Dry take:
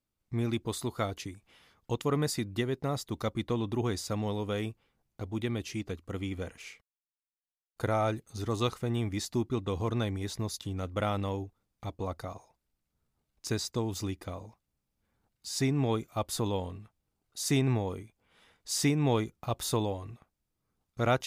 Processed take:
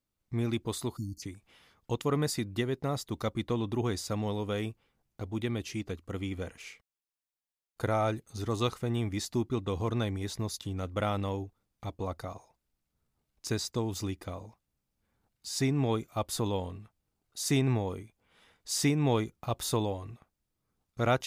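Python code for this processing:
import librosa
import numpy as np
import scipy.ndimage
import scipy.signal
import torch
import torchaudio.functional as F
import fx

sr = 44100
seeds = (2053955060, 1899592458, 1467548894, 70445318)

y = fx.spec_erase(x, sr, start_s=0.97, length_s=0.26, low_hz=340.0, high_hz=4300.0)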